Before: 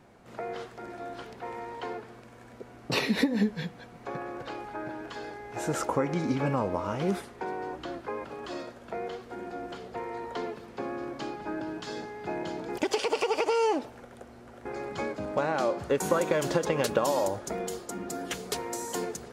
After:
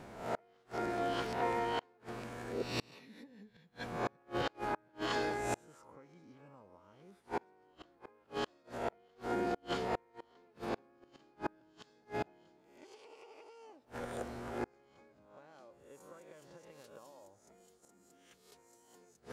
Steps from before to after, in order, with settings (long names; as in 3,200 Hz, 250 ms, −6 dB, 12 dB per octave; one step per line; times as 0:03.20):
peak hold with a rise ahead of every peak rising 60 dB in 0.60 s
gate with flip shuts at −27 dBFS, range −35 dB
level +3.5 dB